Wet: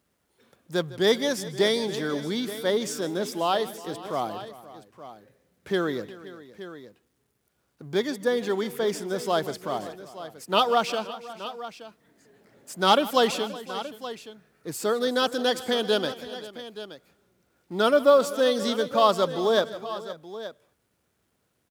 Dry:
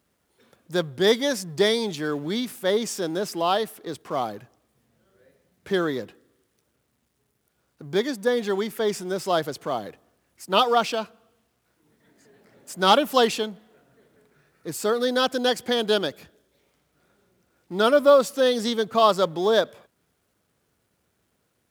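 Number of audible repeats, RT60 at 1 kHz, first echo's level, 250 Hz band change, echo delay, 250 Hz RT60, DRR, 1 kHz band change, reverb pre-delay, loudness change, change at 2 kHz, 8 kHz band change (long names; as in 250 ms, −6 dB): 4, no reverb audible, −18.5 dB, −1.5 dB, 156 ms, no reverb audible, no reverb audible, −1.5 dB, no reverb audible, −2.0 dB, −1.5 dB, −1.5 dB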